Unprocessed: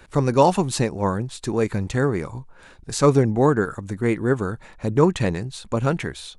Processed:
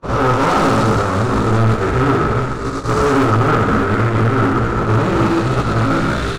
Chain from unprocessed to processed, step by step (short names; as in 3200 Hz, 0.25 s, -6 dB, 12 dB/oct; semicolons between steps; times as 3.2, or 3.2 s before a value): time blur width 0.552 s; reverse; upward compressor, threshold -27 dBFS; reverse; doubler 18 ms -3.5 dB; chorus voices 6, 0.35 Hz, delay 17 ms, depth 2.5 ms; sample leveller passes 5; air absorption 65 m; on a send: flutter echo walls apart 10.8 m, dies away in 0.77 s; on the sum: hard clip -13 dBFS, distortion -11 dB; gate -15 dBFS, range -50 dB; bell 1300 Hz +14 dB 0.28 oct; gain +7.5 dB